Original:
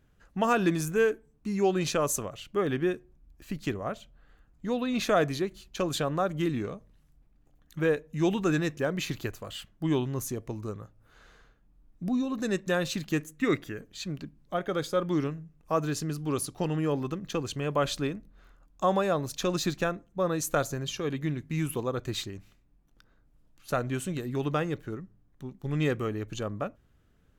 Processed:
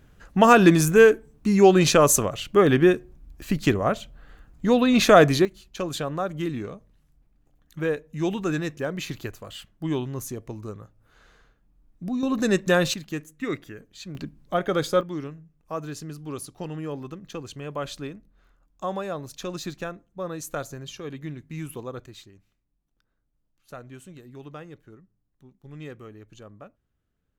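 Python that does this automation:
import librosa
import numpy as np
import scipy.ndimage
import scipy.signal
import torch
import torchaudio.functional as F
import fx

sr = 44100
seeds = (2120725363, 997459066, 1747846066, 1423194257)

y = fx.gain(x, sr, db=fx.steps((0.0, 10.5), (5.45, 0.0), (12.23, 7.5), (12.94, -3.0), (14.15, 6.0), (15.01, -4.5), (22.06, -12.0)))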